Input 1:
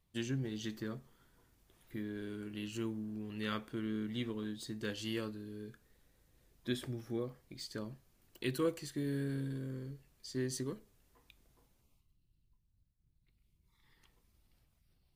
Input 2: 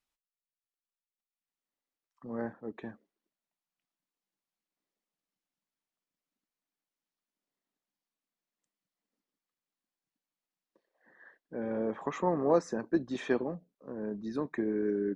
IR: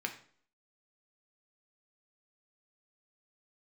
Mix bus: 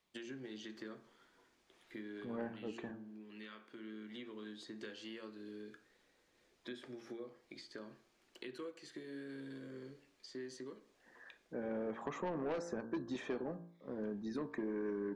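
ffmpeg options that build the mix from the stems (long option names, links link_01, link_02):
-filter_complex "[0:a]acrossover=split=260 7600:gain=0.112 1 0.0708[link_01][link_02][link_03];[link_01][link_02][link_03]amix=inputs=3:normalize=0,acompressor=threshold=-48dB:ratio=6,volume=1dB,asplit=2[link_04][link_05];[link_05]volume=-8.5dB[link_06];[1:a]asoftclip=type=tanh:threshold=-25dB,volume=-1.5dB,asplit=2[link_07][link_08];[link_08]apad=whole_len=668336[link_09];[link_04][link_09]sidechaincompress=threshold=-52dB:ratio=8:attack=6:release=1350[link_10];[2:a]atrim=start_sample=2205[link_11];[link_06][link_11]afir=irnorm=-1:irlink=0[link_12];[link_10][link_07][link_12]amix=inputs=3:normalize=0,bandreject=frequency=57.08:width_type=h:width=4,bandreject=frequency=114.16:width_type=h:width=4,bandreject=frequency=171.24:width_type=h:width=4,bandreject=frequency=228.32:width_type=h:width=4,bandreject=frequency=285.4:width_type=h:width=4,bandreject=frequency=342.48:width_type=h:width=4,bandreject=frequency=399.56:width_type=h:width=4,bandreject=frequency=456.64:width_type=h:width=4,bandreject=frequency=513.72:width_type=h:width=4,bandreject=frequency=570.8:width_type=h:width=4,bandreject=frequency=627.88:width_type=h:width=4,bandreject=frequency=684.96:width_type=h:width=4,bandreject=frequency=742.04:width_type=h:width=4,bandreject=frequency=799.12:width_type=h:width=4,bandreject=frequency=856.2:width_type=h:width=4,bandreject=frequency=913.28:width_type=h:width=4,bandreject=frequency=970.36:width_type=h:width=4,bandreject=frequency=1027.44:width_type=h:width=4,bandreject=frequency=1084.52:width_type=h:width=4,bandreject=frequency=1141.6:width_type=h:width=4,bandreject=frequency=1198.68:width_type=h:width=4,bandreject=frequency=1255.76:width_type=h:width=4,bandreject=frequency=1312.84:width_type=h:width=4,bandreject=frequency=1369.92:width_type=h:width=4,bandreject=frequency=1427:width_type=h:width=4,bandreject=frequency=1484.08:width_type=h:width=4,bandreject=frequency=1541.16:width_type=h:width=4,bandreject=frequency=1598.24:width_type=h:width=4,bandreject=frequency=1655.32:width_type=h:width=4,bandreject=frequency=1712.4:width_type=h:width=4,acrossover=split=1100|2200[link_13][link_14][link_15];[link_13]acompressor=threshold=-37dB:ratio=4[link_16];[link_14]acompressor=threshold=-54dB:ratio=4[link_17];[link_15]acompressor=threshold=-55dB:ratio=4[link_18];[link_16][link_17][link_18]amix=inputs=3:normalize=0"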